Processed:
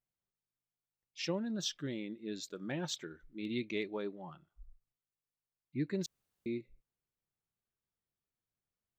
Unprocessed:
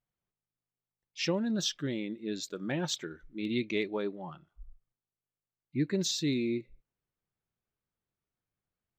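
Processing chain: 1.22–1.68 three-band expander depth 40%; 6.06–6.46 room tone; gain -5.5 dB

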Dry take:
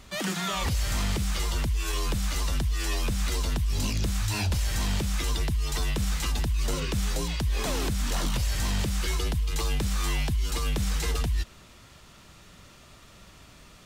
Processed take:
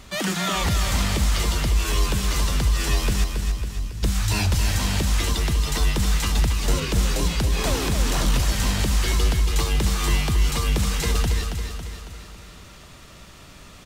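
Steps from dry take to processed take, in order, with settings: 3.24–4.03 passive tone stack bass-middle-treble 10-0-1; on a send: feedback echo 0.276 s, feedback 54%, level -6.5 dB; on the sum: gain +5 dB

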